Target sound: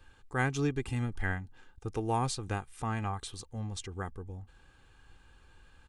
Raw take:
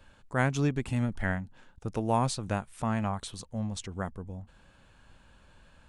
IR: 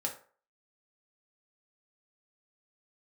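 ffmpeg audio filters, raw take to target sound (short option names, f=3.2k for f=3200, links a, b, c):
-af "equalizer=f=630:w=3.2:g=-6,aecho=1:1:2.5:0.5,volume=-2.5dB"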